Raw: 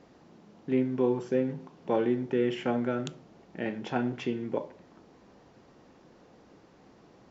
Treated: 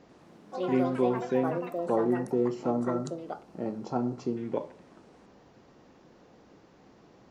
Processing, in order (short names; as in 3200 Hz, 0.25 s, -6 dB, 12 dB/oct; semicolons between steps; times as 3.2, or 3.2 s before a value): spectral gain 1.57–4.37, 1400–3900 Hz -18 dB; echoes that change speed 93 ms, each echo +6 st, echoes 3, each echo -6 dB